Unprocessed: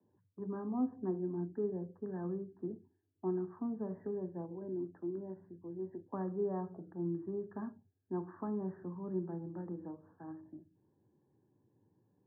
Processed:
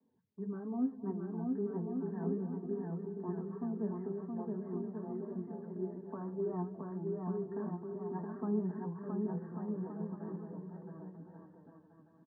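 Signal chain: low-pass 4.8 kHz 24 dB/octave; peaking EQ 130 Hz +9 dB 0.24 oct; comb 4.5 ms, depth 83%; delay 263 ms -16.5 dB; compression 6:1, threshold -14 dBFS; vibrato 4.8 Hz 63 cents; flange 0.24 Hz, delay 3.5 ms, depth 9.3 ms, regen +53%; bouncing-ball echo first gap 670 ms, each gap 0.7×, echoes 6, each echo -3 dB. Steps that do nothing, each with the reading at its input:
low-pass 4.8 kHz: input has nothing above 1.2 kHz; compression, threshold -14 dBFS: peak at its input -20.0 dBFS

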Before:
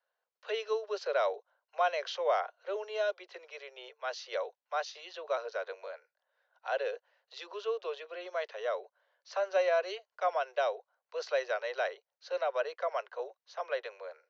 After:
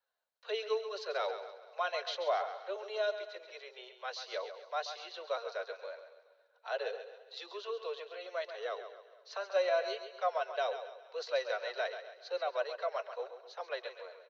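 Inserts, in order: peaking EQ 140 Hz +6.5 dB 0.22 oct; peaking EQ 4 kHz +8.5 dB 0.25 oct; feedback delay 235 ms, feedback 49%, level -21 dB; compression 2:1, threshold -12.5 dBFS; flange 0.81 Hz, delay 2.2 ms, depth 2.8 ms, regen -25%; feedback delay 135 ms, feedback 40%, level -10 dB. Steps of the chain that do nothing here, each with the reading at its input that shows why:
peaking EQ 140 Hz: input has nothing below 340 Hz; compression, threshold -12.5 dBFS: peak at its input -17.5 dBFS

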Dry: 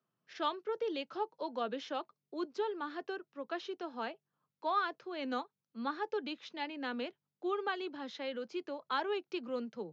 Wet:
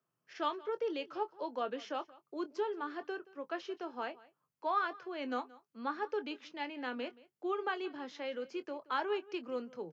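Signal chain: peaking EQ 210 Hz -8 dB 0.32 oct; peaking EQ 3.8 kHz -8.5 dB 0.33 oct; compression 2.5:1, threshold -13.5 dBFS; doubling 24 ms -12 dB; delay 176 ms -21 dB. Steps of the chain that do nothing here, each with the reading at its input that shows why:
compression, threshold -13.5 dBFS: peak at its input -22.0 dBFS

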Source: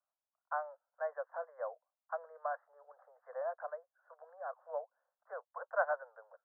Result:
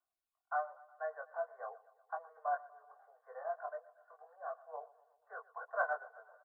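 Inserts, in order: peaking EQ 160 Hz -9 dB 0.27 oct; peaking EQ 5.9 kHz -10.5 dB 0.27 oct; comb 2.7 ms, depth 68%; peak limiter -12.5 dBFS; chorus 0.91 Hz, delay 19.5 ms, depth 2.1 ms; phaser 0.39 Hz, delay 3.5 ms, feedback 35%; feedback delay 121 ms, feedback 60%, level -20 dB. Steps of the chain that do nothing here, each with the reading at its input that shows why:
peaking EQ 160 Hz: input has nothing below 430 Hz; peaking EQ 5.9 kHz: input has nothing above 1.8 kHz; peak limiter -12.5 dBFS: peak at its input -16.5 dBFS

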